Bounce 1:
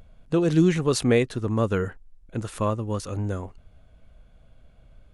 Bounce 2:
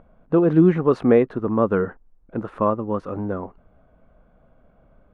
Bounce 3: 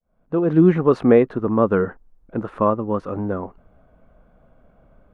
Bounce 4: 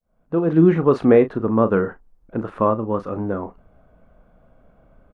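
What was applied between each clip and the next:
drawn EQ curve 110 Hz 0 dB, 190 Hz +10 dB, 1,200 Hz +12 dB, 7,700 Hz −24 dB; level −5.5 dB
fade in at the beginning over 0.70 s; level +2 dB
double-tracking delay 36 ms −11.5 dB

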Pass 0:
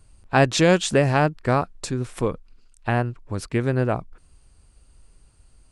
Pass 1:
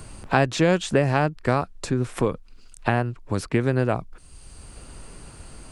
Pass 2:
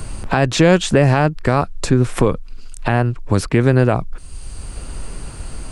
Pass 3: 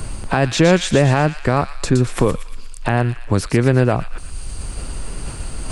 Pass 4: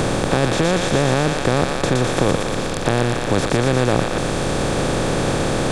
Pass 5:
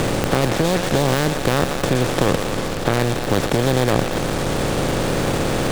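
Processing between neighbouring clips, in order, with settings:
multiband upward and downward compressor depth 70%; level −1 dB
low-shelf EQ 64 Hz +8.5 dB; boost into a limiter +9.5 dB; level −1 dB
reversed playback; upward compression, threshold −18 dBFS; reversed playback; delay with a high-pass on its return 118 ms, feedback 51%, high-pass 2,200 Hz, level −6 dB; level −1 dB
compressor on every frequency bin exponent 0.2; level −9 dB
gap after every zero crossing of 0.23 ms

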